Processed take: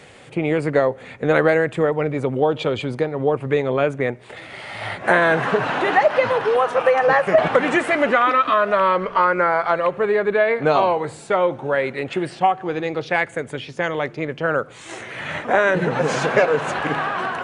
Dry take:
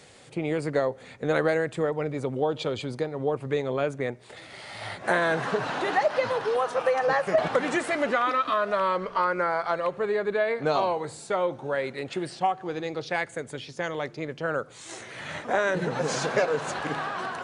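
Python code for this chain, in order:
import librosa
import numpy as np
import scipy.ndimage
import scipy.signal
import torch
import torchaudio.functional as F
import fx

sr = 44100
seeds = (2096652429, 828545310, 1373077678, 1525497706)

y = fx.high_shelf_res(x, sr, hz=3500.0, db=-6.0, q=1.5)
y = y * librosa.db_to_amplitude(7.5)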